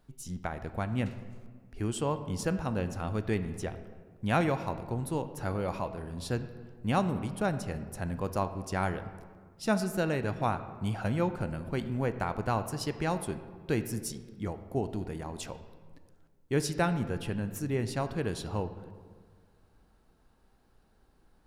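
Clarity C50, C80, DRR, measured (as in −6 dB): 11.5 dB, 13.0 dB, 10.0 dB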